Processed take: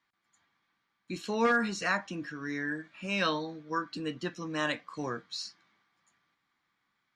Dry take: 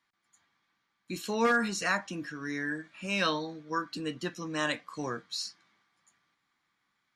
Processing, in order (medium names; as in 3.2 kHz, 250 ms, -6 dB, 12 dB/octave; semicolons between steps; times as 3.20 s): distance through air 66 m